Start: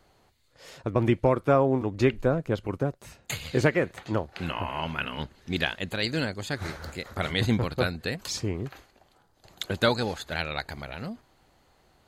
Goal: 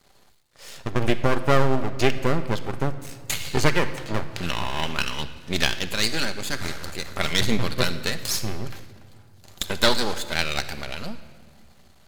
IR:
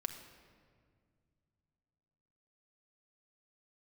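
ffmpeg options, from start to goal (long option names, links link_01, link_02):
-filter_complex "[0:a]aeval=exprs='max(val(0),0)':channel_layout=same,asplit=2[link_01][link_02];[1:a]atrim=start_sample=2205,highshelf=frequency=2200:gain=11.5[link_03];[link_02][link_03]afir=irnorm=-1:irlink=0,volume=0.5dB[link_04];[link_01][link_04]amix=inputs=2:normalize=0"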